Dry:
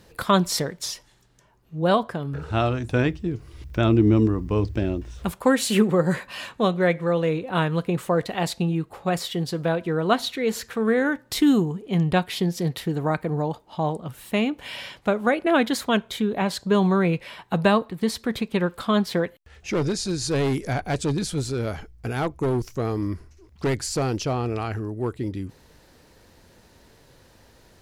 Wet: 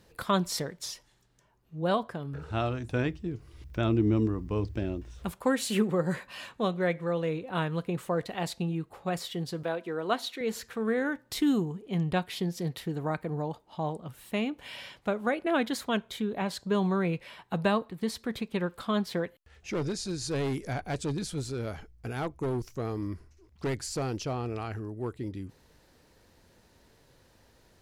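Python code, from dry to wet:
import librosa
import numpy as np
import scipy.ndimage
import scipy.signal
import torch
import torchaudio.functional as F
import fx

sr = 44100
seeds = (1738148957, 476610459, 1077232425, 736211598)

y = fx.highpass(x, sr, hz=270.0, slope=12, at=(9.63, 10.41))
y = F.gain(torch.from_numpy(y), -7.5).numpy()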